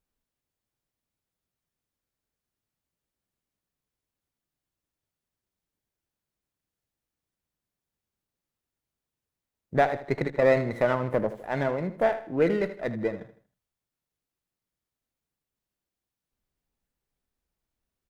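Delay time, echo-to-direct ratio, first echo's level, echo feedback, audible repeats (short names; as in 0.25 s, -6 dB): 79 ms, -12.5 dB, -13.0 dB, 36%, 3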